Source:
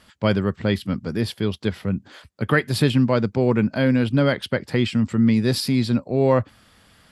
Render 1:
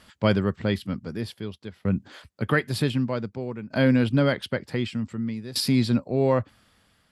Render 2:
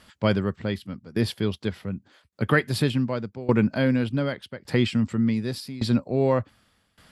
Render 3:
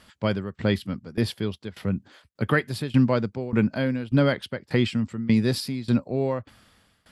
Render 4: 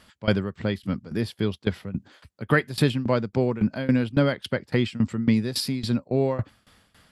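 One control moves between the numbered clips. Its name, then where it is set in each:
shaped tremolo, speed: 0.54, 0.86, 1.7, 3.6 Hertz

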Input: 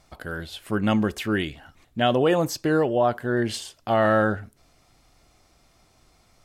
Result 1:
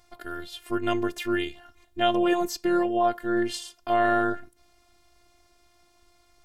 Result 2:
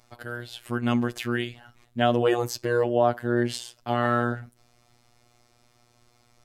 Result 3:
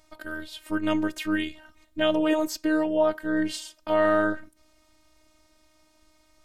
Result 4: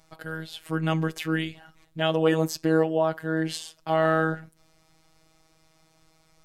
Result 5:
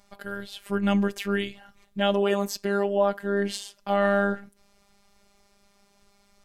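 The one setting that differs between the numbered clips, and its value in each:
phases set to zero, frequency: 350, 120, 310, 160, 200 Hertz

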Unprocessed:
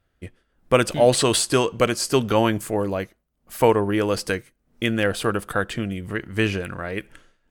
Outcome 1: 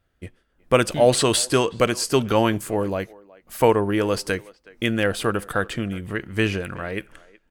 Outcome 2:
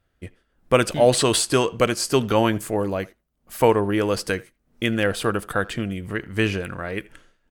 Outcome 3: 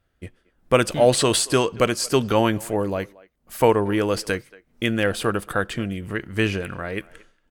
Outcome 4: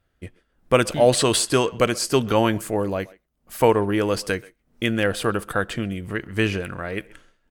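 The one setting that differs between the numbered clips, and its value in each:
far-end echo of a speakerphone, delay time: 370, 80, 230, 130 milliseconds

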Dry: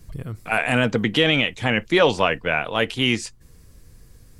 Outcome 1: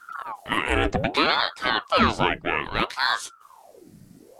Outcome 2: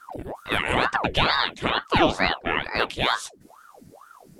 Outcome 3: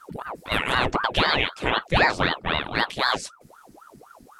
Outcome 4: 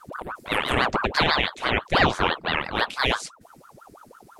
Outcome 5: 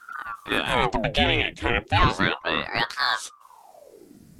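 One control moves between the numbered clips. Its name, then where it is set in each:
ring modulator whose carrier an LFO sweeps, at: 0.62, 2.2, 3.9, 6, 0.34 Hertz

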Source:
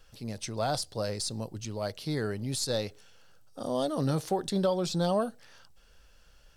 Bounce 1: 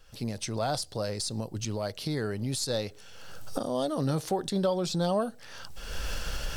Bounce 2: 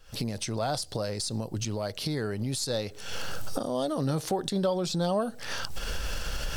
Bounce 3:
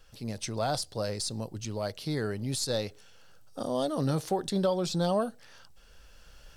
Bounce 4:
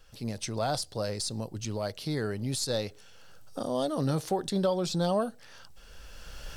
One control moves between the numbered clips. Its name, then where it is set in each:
camcorder AGC, rising by: 34, 88, 5.4, 14 dB per second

